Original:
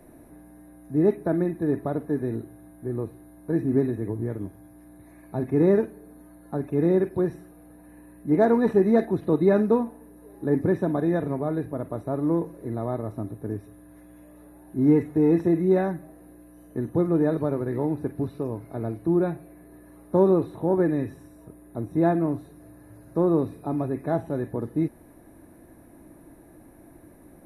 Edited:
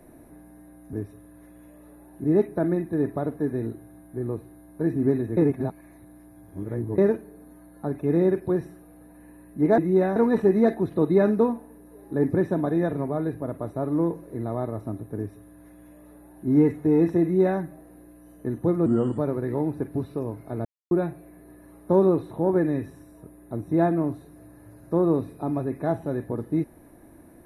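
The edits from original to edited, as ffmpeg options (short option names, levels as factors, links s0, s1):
-filter_complex "[0:a]asplit=11[s0][s1][s2][s3][s4][s5][s6][s7][s8][s9][s10];[s0]atrim=end=0.932[s11];[s1]atrim=start=13.468:end=14.782[s12];[s2]atrim=start=0.928:end=4.062[s13];[s3]atrim=start=4.058:end=5.672,asetpts=PTS-STARTPTS,areverse[s14];[s4]atrim=start=5.668:end=8.472[s15];[s5]atrim=start=15.528:end=15.912[s16];[s6]atrim=start=8.468:end=17.174[s17];[s7]atrim=start=17.17:end=17.42,asetpts=PTS-STARTPTS,asetrate=34398,aresample=44100[s18];[s8]atrim=start=17.416:end=18.89,asetpts=PTS-STARTPTS,afade=t=out:st=1.47:d=0.004:c=hsin[s19];[s9]atrim=start=18.89:end=19.15,asetpts=PTS-STARTPTS,volume=0[s20];[s10]atrim=start=19.15,asetpts=PTS-STARTPTS,afade=t=in:d=0.004:c=hsin[s21];[s11][s12]acrossfade=d=0.004:c1=hsin:c2=hsin[s22];[s22][s13]acrossfade=d=0.004:c1=hsin:c2=hsin[s23];[s23][s14]acrossfade=d=0.004:c1=hsin:c2=hsin[s24];[s24][s15]acrossfade=d=0.004:c1=hsin:c2=hsin[s25];[s25][s16]acrossfade=d=0.004:c1=hsin:c2=hsin[s26];[s26][s17]acrossfade=d=0.004:c1=hsin:c2=hsin[s27];[s27][s18]acrossfade=d=0.004:c1=hsin:c2=hsin[s28];[s19][s20][s21]concat=n=3:v=0:a=1[s29];[s28][s29]acrossfade=d=0.004:c1=hsin:c2=hsin"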